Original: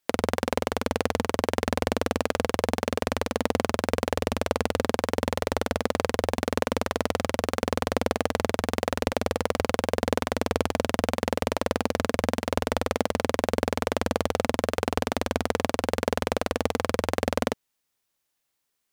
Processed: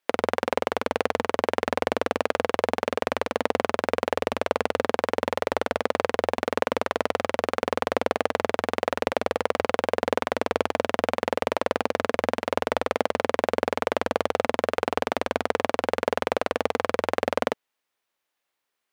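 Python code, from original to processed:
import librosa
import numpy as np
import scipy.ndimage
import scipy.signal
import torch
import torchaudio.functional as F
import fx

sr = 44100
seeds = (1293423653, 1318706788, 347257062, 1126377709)

y = fx.bass_treble(x, sr, bass_db=-13, treble_db=-10)
y = y * 10.0 ** (3.0 / 20.0)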